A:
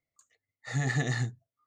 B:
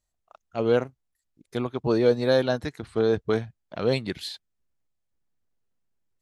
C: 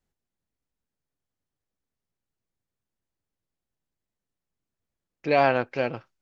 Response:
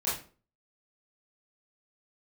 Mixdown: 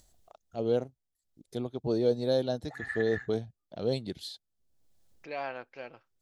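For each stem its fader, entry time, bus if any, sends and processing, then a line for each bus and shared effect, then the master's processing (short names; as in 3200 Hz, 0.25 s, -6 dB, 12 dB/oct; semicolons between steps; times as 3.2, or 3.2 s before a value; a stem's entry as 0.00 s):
+2.5 dB, 2.00 s, no send, auto-wah 220–1600 Hz, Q 6.1, up, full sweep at -32.5 dBFS
-6.0 dB, 0.00 s, no send, band shelf 1600 Hz -11 dB
-14.5 dB, 0.00 s, no send, low shelf 270 Hz -11.5 dB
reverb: off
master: upward compressor, threshold -46 dBFS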